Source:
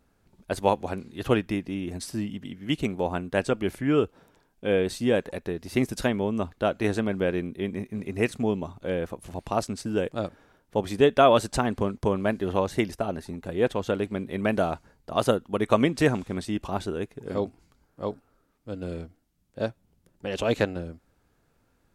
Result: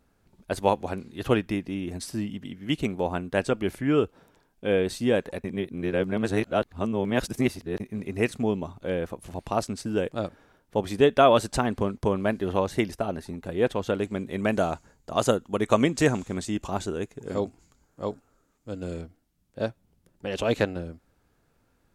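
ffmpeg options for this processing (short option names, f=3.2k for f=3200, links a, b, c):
-filter_complex "[0:a]asettb=1/sr,asplit=3[a][b][c];[a]atrim=end=14.004[d];[b]atrim=start=14:end=19.01,asetpts=PTS-STARTPTS,afade=t=in:d=0.004:c=qsin,afade=t=out:st=5.006:d=0.004:c=qsin,equalizer=f=7k:w=3.2:g=11.5[e];[c]atrim=start=19.006[f];[d][e]acrossfade=d=0.004:c1=hsin:c2=qsin[g];[g][f]acrossfade=d=0.004:c1=qsin:c2=hsin,asplit=3[h][i][j];[h]atrim=end=5.442[k];[i]atrim=start=5.438:end=7.802,asetpts=PTS-STARTPTS,areverse[l];[j]atrim=start=7.798[m];[k][l]acrossfade=d=0.004:c1=hsin:c2=hsin[n];[n][m]acrossfade=d=0.004:c1=hsin:c2=hsin"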